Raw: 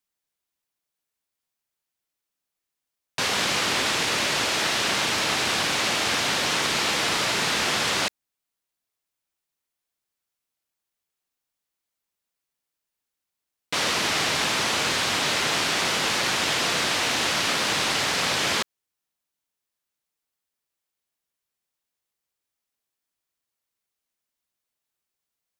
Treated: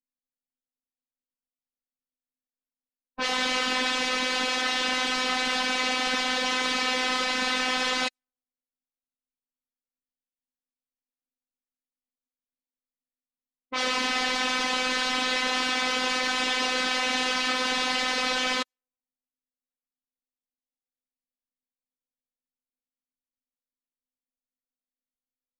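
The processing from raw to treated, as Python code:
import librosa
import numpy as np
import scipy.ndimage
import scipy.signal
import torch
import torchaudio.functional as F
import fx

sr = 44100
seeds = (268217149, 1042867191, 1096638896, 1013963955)

y = fx.spec_expand(x, sr, power=1.7)
y = fx.robotise(y, sr, hz=255.0)
y = fx.env_lowpass(y, sr, base_hz=320.0, full_db=-24.0)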